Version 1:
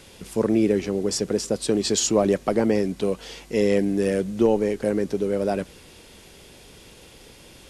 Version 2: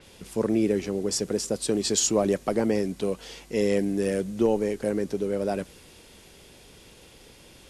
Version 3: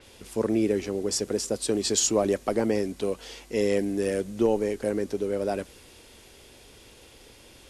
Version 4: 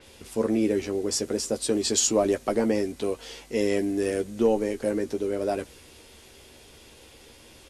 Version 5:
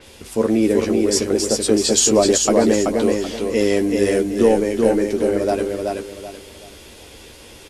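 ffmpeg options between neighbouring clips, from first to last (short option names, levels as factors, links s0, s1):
-af "adynamicequalizer=threshold=0.01:dfrequency=5700:dqfactor=0.7:tfrequency=5700:tqfactor=0.7:attack=5:release=100:ratio=0.375:range=2.5:mode=boostabove:tftype=highshelf,volume=0.668"
-af "equalizer=f=170:w=5.5:g=-14.5"
-filter_complex "[0:a]asplit=2[s0][s1];[s1]adelay=13,volume=0.447[s2];[s0][s2]amix=inputs=2:normalize=0"
-af "aecho=1:1:381|762|1143|1524:0.668|0.194|0.0562|0.0163,volume=2.24"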